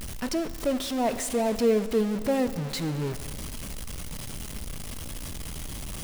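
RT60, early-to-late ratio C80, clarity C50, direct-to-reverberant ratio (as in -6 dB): 2.4 s, 13.5 dB, 12.5 dB, 11.5 dB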